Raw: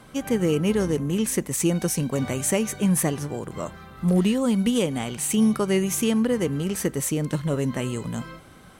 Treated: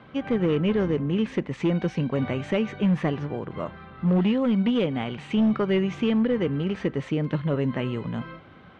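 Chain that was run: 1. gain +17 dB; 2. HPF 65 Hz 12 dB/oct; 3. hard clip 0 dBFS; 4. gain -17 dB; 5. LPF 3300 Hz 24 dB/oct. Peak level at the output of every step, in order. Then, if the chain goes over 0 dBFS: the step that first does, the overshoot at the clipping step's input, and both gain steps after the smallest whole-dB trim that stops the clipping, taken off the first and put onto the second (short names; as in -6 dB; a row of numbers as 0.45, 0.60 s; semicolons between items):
+6.5, +6.0, 0.0, -17.0, -16.0 dBFS; step 1, 6.0 dB; step 1 +11 dB, step 4 -11 dB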